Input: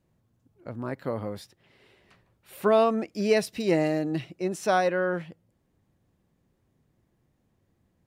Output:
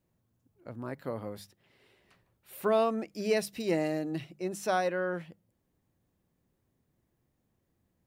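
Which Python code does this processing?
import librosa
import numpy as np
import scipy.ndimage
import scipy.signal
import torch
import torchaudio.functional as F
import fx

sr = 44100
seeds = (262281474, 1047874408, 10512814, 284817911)

y = fx.high_shelf(x, sr, hz=11000.0, db=10.5)
y = fx.hum_notches(y, sr, base_hz=50, count=4)
y = y * librosa.db_to_amplitude(-5.5)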